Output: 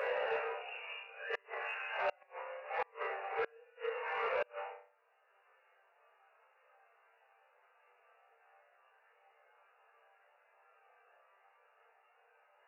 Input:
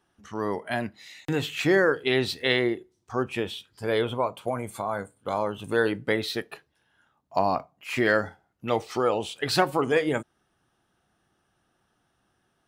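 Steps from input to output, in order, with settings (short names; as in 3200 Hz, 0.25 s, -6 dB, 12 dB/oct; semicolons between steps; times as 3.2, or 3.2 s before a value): half-waves squared off; compressor 6:1, threshold -31 dBFS, peak gain reduction 17 dB; Paulstretch 4.2×, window 0.05 s, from 9.1; brick-wall FIR band-pass 420–2900 Hz; resonator bank C2 fifth, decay 0.43 s; flipped gate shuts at -37 dBFS, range -34 dB; soft clip -38.5 dBFS, distortion -23 dB; gain +14 dB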